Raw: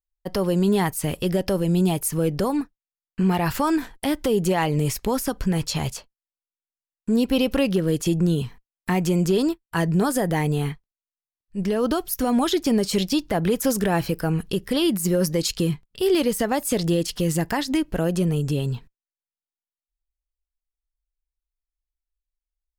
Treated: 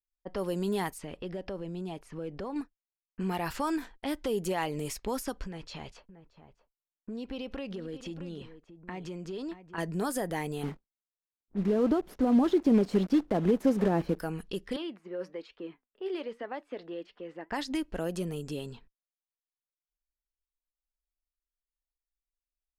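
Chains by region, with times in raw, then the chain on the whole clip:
0.98–2.56 high shelf 3700 Hz -7.5 dB + compressor 2.5:1, threshold -24 dBFS
5.46–9.78 compressor, threshold -24 dBFS + echo 0.628 s -12.5 dB
10.63–14.2 block floating point 3-bit + LPF 1100 Hz 6 dB/oct + bell 230 Hz +9 dB 2.6 oct
14.76–17.51 three-band isolator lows -24 dB, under 260 Hz, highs -16 dB, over 3300 Hz + flange 1.1 Hz, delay 2.9 ms, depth 2.8 ms, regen +86%
whole clip: low-pass opened by the level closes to 1100 Hz, open at -18.5 dBFS; bell 120 Hz -13 dB 0.87 oct; gain -8.5 dB

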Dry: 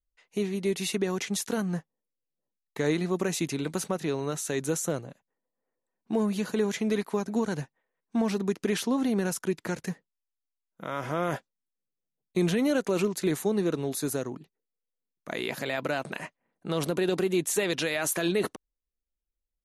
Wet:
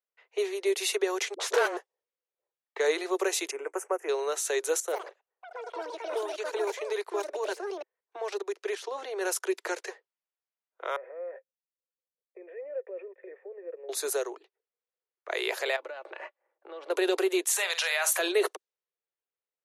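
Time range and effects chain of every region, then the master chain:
1.34–1.77 overdrive pedal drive 28 dB, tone 1300 Hz, clips at -16 dBFS + dispersion highs, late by 61 ms, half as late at 410 Hz
3.51–4.09 Butterworth band-stop 4000 Hz, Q 0.76 + upward expander, over -43 dBFS
4.8–9.21 level quantiser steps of 15 dB + echoes that change speed 80 ms, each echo +7 st, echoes 3, each echo -6 dB
10.96–13.89 compressor 4:1, threshold -26 dBFS + vocal tract filter e + air absorption 480 m
15.76–16.9 LPF 1800 Hz 6 dB/oct + comb 3.5 ms, depth 51% + compressor 10:1, threshold -37 dBFS
17.45–18.19 HPF 710 Hz 24 dB/oct + doubler 48 ms -11.5 dB
whole clip: steep high-pass 370 Hz 72 dB/oct; low-pass opened by the level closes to 2400 Hz, open at -29.5 dBFS; gain +3 dB

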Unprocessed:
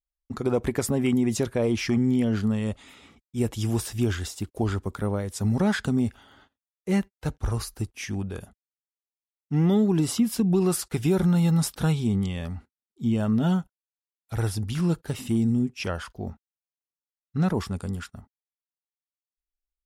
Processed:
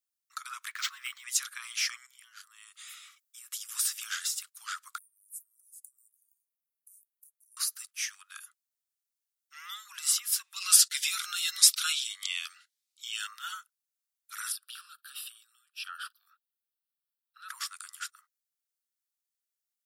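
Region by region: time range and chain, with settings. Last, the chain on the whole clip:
0.7–1.24 HPF 550 Hz 6 dB/oct + decimation joined by straight lines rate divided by 4×
2.06–3.69 HPF 61 Hz 24 dB/oct + high shelf 8400 Hz +8 dB + compressor 20:1, threshold -34 dBFS
4.98–7.57 inverse Chebyshev band-stop 740–2700 Hz, stop band 80 dB + compressor 2:1, threshold -46 dBFS
10.56–13.27 weighting filter D + cascading phaser rising 1.7 Hz
14.52–17.49 compressor 2:1, threshold -33 dBFS + fixed phaser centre 1400 Hz, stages 8
whole clip: steep high-pass 1200 Hz 72 dB/oct; bell 2100 Hz -9.5 dB 2.2 oct; gain +8.5 dB

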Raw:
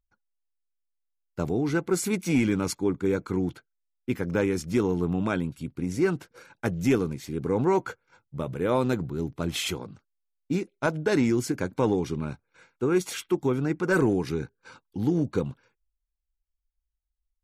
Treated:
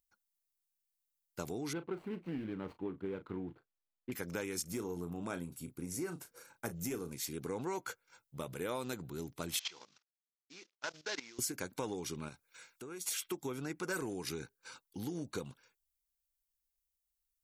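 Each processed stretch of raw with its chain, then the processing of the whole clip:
1.73–4.12 median filter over 25 samples + air absorption 500 m + doubler 36 ms -13 dB
4.62–7.13 bell 3300 Hz -9.5 dB 2.2 oct + doubler 35 ms -10.5 dB
9.59–11.39 CVSD 32 kbps + HPF 1100 Hz 6 dB/oct + level quantiser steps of 16 dB
12.28–13.22 compressor 5:1, threshold -36 dBFS + mismatched tape noise reduction encoder only
whole clip: pre-emphasis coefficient 0.8; compressor, threshold -40 dBFS; low shelf 270 Hz -7 dB; gain +7 dB

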